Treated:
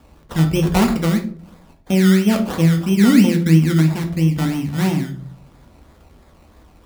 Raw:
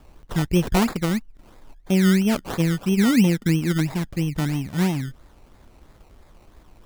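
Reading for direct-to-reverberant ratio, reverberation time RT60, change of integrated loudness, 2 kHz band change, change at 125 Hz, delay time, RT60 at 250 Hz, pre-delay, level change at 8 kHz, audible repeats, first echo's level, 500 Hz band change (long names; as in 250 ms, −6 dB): 3.5 dB, 0.50 s, +5.5 dB, +3.0 dB, +6.5 dB, no echo audible, 0.70 s, 3 ms, +3.0 dB, no echo audible, no echo audible, +4.0 dB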